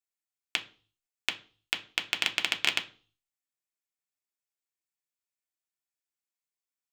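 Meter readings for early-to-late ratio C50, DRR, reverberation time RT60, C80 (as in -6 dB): 17.0 dB, 4.0 dB, 0.40 s, 22.0 dB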